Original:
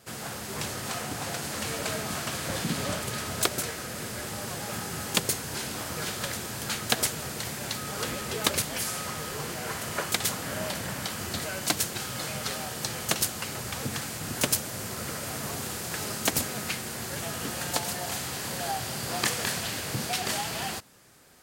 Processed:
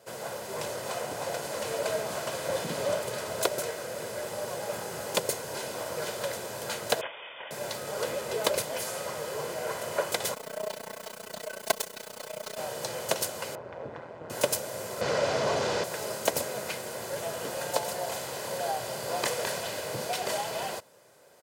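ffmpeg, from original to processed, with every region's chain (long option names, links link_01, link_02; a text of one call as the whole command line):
ffmpeg -i in.wav -filter_complex "[0:a]asettb=1/sr,asplit=3[link_01][link_02][link_03];[link_01]atrim=end=7.014[link_04];[link_02]atrim=start=7.01:end=7.51,asetpts=PTS-STARTPTS,afade=type=in:duration=0.004:curve=qsin,afade=type=out:start_time=0.496:duration=0.004:curve=qsin,highpass=540,lowpass=frequency=3200:width_type=q:width=0.5098,lowpass=frequency=3200:width_type=q:width=0.6013,lowpass=frequency=3200:width_type=q:width=0.9,lowpass=frequency=3200:width_type=q:width=2.563,afreqshift=-3800[link_05];[link_03]atrim=start=7.506[link_06];[link_04][link_05]acrossfade=duration=0.004:curve1=hsin:curve2=qsin[link_07];[link_07][link_06]acrossfade=duration=0.004:curve1=qsin:curve2=hsin,asettb=1/sr,asplit=3[link_08][link_09][link_10];[link_08]atrim=end=10.344[link_11];[link_09]atrim=start=10.34:end=12.58,asetpts=PTS-STARTPTS,afade=type=in:duration=0.004:curve=qsin,afade=type=out:start_time=2.236:duration=0.004:curve=qsin,acrusher=bits=4:dc=4:mix=0:aa=0.000001,aecho=1:1:4.6:0.89,atrim=end_sample=98784,tremolo=f=30:d=0.919[link_12];[link_10]atrim=start=12.576[link_13];[link_11][link_12]acrossfade=duration=0.004:curve1=hsin:curve2=qsin[link_14];[link_14][link_13]acrossfade=duration=0.004:curve1=qsin:curve2=hsin,asettb=1/sr,asplit=3[link_15][link_16][link_17];[link_15]atrim=end=13.554[link_18];[link_16]atrim=start=13.55:end=14.3,asetpts=PTS-STARTPTS,afade=type=in:duration=0.004:curve=qsin,afade=type=out:start_time=0.746:duration=0.004:curve=qsin,lowpass=1500,tremolo=f=170:d=0.889[link_19];[link_17]atrim=start=14.296[link_20];[link_18][link_19]acrossfade=duration=0.004:curve1=hsin:curve2=qsin[link_21];[link_21][link_20]acrossfade=duration=0.004:curve1=qsin:curve2=hsin,asettb=1/sr,asplit=3[link_22][link_23][link_24];[link_22]atrim=end=15.014[link_25];[link_23]atrim=start=15.01:end=15.84,asetpts=PTS-STARTPTS,afade=type=in:duration=0.004:curve=qsin,afade=type=out:start_time=0.826:duration=0.004:curve=qsin,lowpass=frequency=5900:width=0.5412,lowpass=frequency=5900:width=1.3066,aeval=exprs='0.0708*sin(PI/2*2.24*val(0)/0.0708)':channel_layout=same[link_26];[link_24]atrim=start=15.836[link_27];[link_25][link_26]acrossfade=duration=0.004:curve1=hsin:curve2=qsin[link_28];[link_28][link_27]acrossfade=duration=0.004:curve1=qsin:curve2=hsin,highpass=130,equalizer=frequency=620:width_type=o:width=1.1:gain=12.5,aecho=1:1:2:0.41,volume=-5.5dB" out.wav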